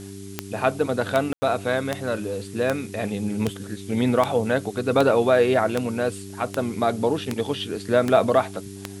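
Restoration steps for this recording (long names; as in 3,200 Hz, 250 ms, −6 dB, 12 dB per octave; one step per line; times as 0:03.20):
click removal
hum removal 98.3 Hz, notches 4
ambience match 0:01.33–0:01.42
noise reduction from a noise print 29 dB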